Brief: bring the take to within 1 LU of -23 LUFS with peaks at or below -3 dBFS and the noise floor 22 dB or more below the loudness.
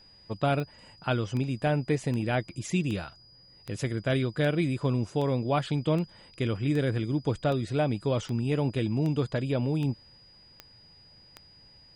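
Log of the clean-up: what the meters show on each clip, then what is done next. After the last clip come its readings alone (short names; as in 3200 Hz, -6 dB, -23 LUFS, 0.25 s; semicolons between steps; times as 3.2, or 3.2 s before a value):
clicks 15; steady tone 4900 Hz; tone level -54 dBFS; loudness -29.0 LUFS; peak -14.0 dBFS; loudness target -23.0 LUFS
-> de-click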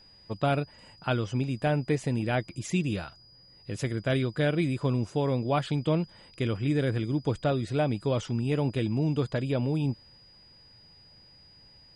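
clicks 0; steady tone 4900 Hz; tone level -54 dBFS
-> notch 4900 Hz, Q 30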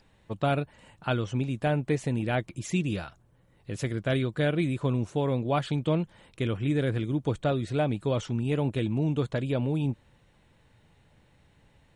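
steady tone none; loudness -29.0 LUFS; peak -13.5 dBFS; loudness target -23.0 LUFS
-> gain +6 dB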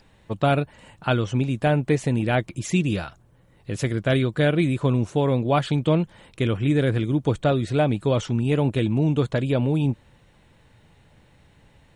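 loudness -23.0 LUFS; peak -7.5 dBFS; noise floor -57 dBFS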